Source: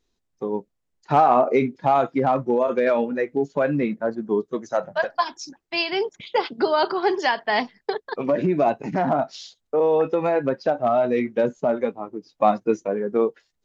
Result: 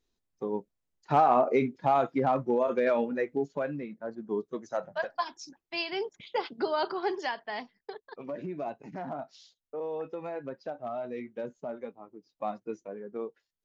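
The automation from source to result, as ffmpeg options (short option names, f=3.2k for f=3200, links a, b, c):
-af "volume=2dB,afade=t=out:st=3.3:d=0.57:silence=0.281838,afade=t=in:st=3.87:d=0.51:silence=0.398107,afade=t=out:st=7.02:d=0.59:silence=0.446684"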